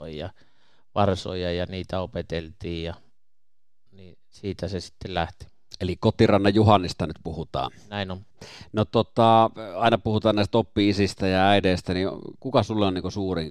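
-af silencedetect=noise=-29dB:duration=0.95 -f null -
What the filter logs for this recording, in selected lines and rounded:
silence_start: 2.92
silence_end: 4.44 | silence_duration: 1.52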